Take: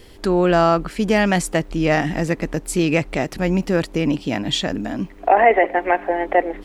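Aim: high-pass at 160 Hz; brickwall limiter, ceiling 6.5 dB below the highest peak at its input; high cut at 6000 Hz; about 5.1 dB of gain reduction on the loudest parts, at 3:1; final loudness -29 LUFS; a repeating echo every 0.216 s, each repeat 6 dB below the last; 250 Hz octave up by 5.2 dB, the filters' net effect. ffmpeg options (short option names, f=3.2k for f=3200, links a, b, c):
-af "highpass=160,lowpass=6k,equalizer=f=250:t=o:g=9,acompressor=threshold=-15dB:ratio=3,alimiter=limit=-12dB:level=0:latency=1,aecho=1:1:216|432|648|864|1080|1296:0.501|0.251|0.125|0.0626|0.0313|0.0157,volume=-8dB"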